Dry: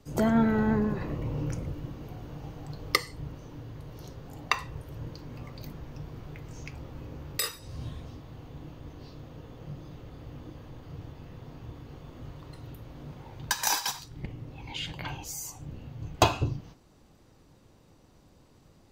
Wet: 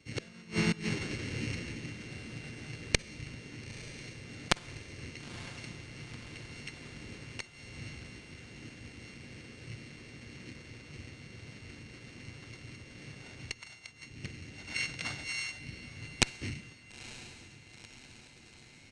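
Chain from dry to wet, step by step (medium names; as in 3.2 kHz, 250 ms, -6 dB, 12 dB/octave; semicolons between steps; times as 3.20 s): sorted samples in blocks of 16 samples; high-pass 540 Hz 6 dB/octave; peaking EQ 880 Hz -13 dB 1.8 oct; inverted gate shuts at -18 dBFS, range -27 dB; Chebyshev shaper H 3 -7 dB, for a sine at -6.5 dBFS; harmony voices -5 st -4 dB, -4 st -1 dB; distance through air 78 m; echo that smears into a reverb 933 ms, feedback 60%, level -15 dB; on a send at -21 dB: reverberation RT60 1.1 s, pre-delay 43 ms; on the sum: resampled via 22.05 kHz; trim +13 dB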